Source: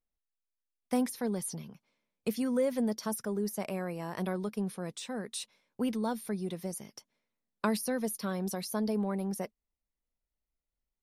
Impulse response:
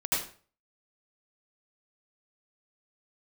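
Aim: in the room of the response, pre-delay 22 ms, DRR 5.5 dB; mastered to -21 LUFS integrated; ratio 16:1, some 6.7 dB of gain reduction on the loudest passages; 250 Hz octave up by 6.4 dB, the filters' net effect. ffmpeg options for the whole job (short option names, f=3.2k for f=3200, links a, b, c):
-filter_complex "[0:a]equalizer=f=250:t=o:g=7.5,acompressor=threshold=-26dB:ratio=16,asplit=2[a][b];[1:a]atrim=start_sample=2205,adelay=22[c];[b][c]afir=irnorm=-1:irlink=0,volume=-14dB[d];[a][d]amix=inputs=2:normalize=0,volume=11dB"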